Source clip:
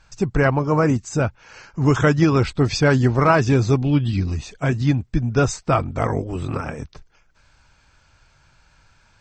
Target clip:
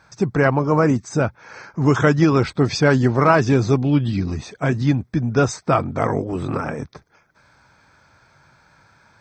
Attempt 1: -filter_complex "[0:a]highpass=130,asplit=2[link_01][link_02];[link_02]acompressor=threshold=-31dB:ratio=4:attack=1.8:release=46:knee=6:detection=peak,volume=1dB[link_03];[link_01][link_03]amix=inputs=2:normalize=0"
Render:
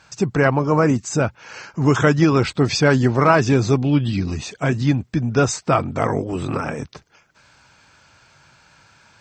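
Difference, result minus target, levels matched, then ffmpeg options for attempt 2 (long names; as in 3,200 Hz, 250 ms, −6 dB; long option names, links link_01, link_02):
4,000 Hz band +3.0 dB
-filter_complex "[0:a]highpass=130,asplit=2[link_01][link_02];[link_02]acompressor=threshold=-31dB:ratio=4:attack=1.8:release=46:knee=6:detection=peak,asuperstop=centerf=4600:order=8:qfactor=1.1,volume=1dB[link_03];[link_01][link_03]amix=inputs=2:normalize=0"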